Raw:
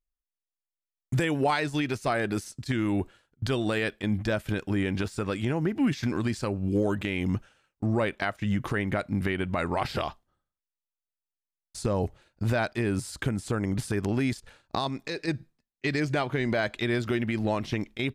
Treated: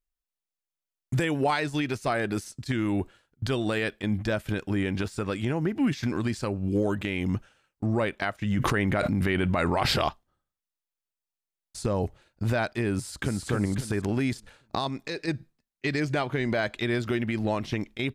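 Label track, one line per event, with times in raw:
8.570000	10.090000	level flattener amount 100%
12.960000	13.470000	echo throw 270 ms, feedback 35%, level -3.5 dB

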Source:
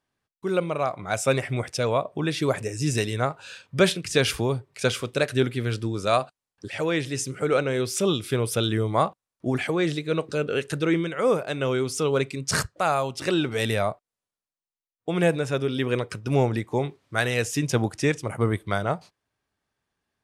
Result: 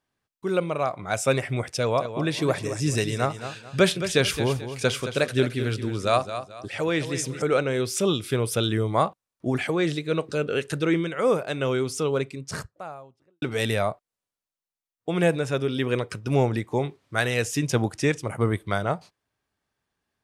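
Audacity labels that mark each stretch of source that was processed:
1.760000	7.420000	feedback delay 218 ms, feedback 32%, level -10.5 dB
11.680000	13.420000	studio fade out

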